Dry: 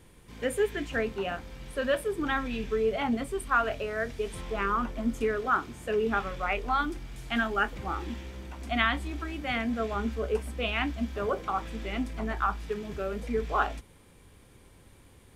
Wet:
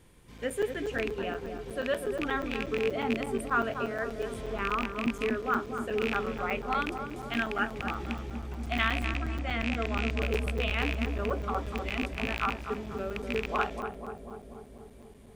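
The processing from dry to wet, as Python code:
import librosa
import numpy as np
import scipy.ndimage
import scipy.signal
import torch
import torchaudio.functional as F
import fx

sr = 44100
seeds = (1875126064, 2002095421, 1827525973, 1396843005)

p1 = fx.rattle_buzz(x, sr, strikes_db=-32.0, level_db=-16.0)
p2 = fx.steep_lowpass(p1, sr, hz=9100.0, slope=36, at=(9.05, 10.23))
p3 = p2 + fx.echo_filtered(p2, sr, ms=244, feedback_pct=80, hz=880.0, wet_db=-5, dry=0)
p4 = fx.buffer_crackle(p3, sr, first_s=0.38, period_s=0.12, block=256, kind='zero')
y = F.gain(torch.from_numpy(p4), -3.0).numpy()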